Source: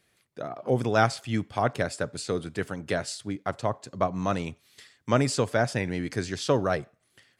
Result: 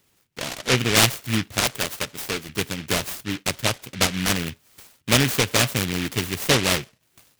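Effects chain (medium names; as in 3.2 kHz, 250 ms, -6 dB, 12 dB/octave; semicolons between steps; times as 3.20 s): 1.60–2.49 s: bass shelf 360 Hz -10 dB; delay time shaken by noise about 2.3 kHz, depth 0.34 ms; trim +4.5 dB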